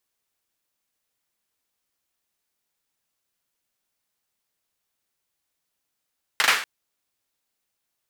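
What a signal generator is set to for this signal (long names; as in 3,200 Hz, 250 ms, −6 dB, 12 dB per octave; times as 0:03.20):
synth clap length 0.24 s, bursts 3, apart 39 ms, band 1,700 Hz, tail 0.47 s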